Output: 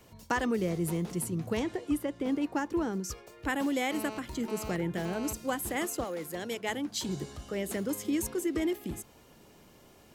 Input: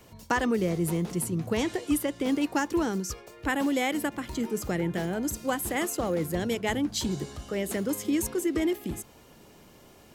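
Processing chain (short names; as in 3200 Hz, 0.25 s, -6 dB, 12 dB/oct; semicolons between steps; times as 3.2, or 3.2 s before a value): 1.59–3.04 high shelf 2500 Hz -9.5 dB; 3.91–5.33 GSM buzz -38 dBFS; 6.03–7.07 HPF 720 Hz -> 230 Hz 6 dB/oct; gain -3.5 dB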